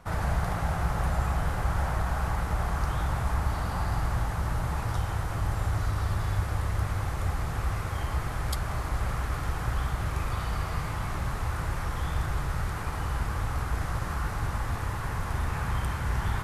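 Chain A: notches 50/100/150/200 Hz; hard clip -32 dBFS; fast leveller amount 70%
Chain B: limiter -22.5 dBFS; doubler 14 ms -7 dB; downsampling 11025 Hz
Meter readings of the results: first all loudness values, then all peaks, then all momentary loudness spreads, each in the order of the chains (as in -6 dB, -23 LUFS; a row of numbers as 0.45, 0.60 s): -35.0, -32.0 LUFS; -28.0, -19.5 dBFS; 1, 2 LU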